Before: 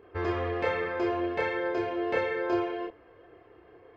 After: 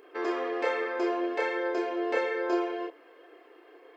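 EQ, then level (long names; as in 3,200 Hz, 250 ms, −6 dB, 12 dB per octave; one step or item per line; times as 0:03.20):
dynamic equaliser 3,200 Hz, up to −7 dB, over −49 dBFS, Q 0.73
linear-phase brick-wall high-pass 250 Hz
high-shelf EQ 2,500 Hz +11 dB
0.0 dB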